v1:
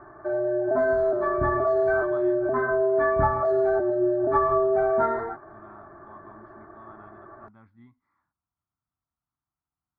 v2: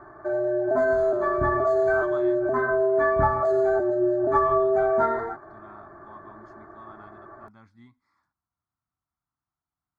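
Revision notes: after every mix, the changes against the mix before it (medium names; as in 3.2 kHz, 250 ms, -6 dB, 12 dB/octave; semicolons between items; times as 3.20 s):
speech: remove distance through air 260 m; master: remove distance through air 190 m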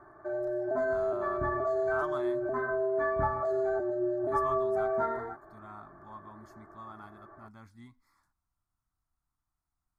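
speech: remove band-pass 100–4200 Hz; background -8.0 dB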